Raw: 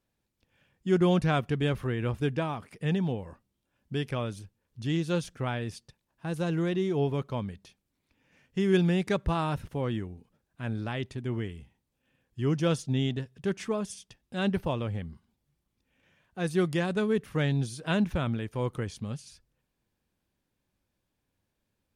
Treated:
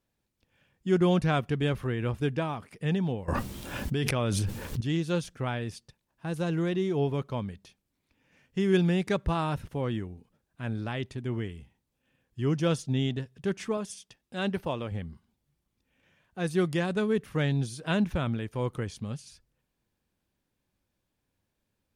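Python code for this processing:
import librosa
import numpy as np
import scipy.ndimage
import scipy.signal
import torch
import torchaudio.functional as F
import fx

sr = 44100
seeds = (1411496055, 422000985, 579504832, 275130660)

y = fx.env_flatten(x, sr, amount_pct=100, at=(3.28, 4.81))
y = fx.low_shelf(y, sr, hz=140.0, db=-9.5, at=(13.77, 14.92))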